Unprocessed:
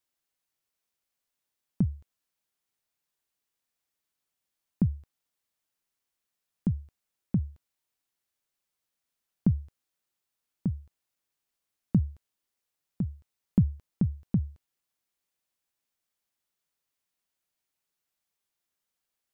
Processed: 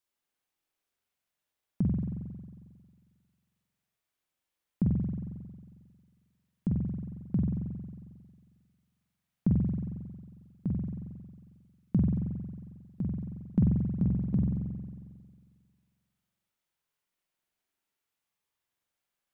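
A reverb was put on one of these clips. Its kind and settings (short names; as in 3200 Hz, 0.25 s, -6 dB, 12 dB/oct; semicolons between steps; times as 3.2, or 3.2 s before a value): spring tank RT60 1.8 s, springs 45 ms, chirp 65 ms, DRR -3 dB; gain -3.5 dB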